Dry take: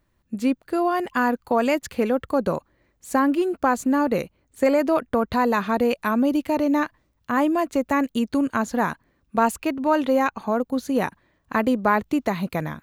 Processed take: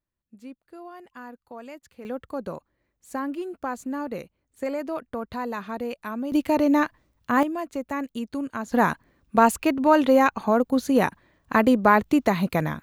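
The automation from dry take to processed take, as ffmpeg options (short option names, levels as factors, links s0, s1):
-af "asetnsamples=n=441:p=0,asendcmd='2.05 volume volume -10dB;6.32 volume volume 1dB;7.43 volume volume -8dB;8.72 volume volume 2.5dB',volume=0.1"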